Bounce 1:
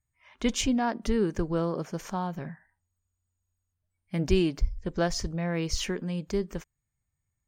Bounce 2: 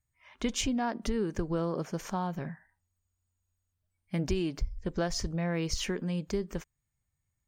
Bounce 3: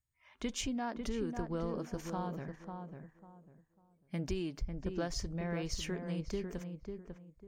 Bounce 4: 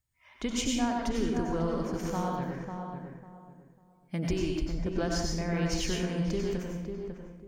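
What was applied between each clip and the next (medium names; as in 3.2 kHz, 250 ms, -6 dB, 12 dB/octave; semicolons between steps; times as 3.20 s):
compression 4:1, threshold -27 dBFS, peak gain reduction 9 dB
filtered feedback delay 547 ms, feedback 27%, low-pass 1.4 kHz, level -5.5 dB; trim -6.5 dB
reverberation RT60 0.65 s, pre-delay 82 ms, DRR 0 dB; trim +4.5 dB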